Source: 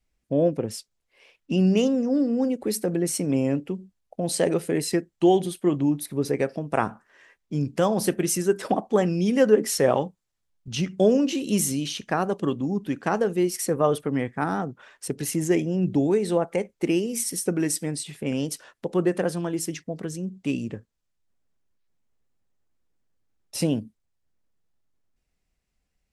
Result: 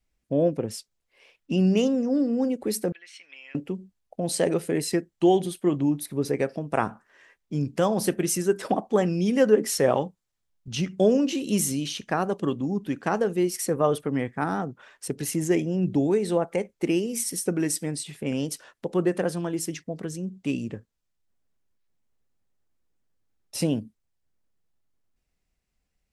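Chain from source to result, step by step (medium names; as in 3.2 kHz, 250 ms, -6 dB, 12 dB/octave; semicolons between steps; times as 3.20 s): 2.92–3.55 s: Butterworth band-pass 2.6 kHz, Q 1.4; trim -1 dB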